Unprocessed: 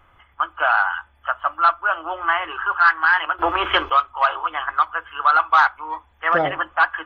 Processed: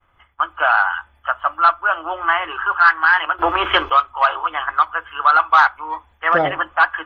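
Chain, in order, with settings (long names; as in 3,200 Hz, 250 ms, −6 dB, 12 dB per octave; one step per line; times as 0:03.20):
downward expander −48 dBFS
level +2.5 dB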